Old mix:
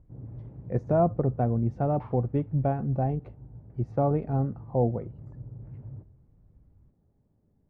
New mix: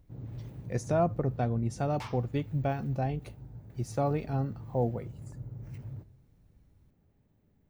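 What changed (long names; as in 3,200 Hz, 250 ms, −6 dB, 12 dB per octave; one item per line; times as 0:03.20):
speech −4.5 dB
second sound: remove high-frequency loss of the air 74 metres
master: remove low-pass filter 1,000 Hz 12 dB per octave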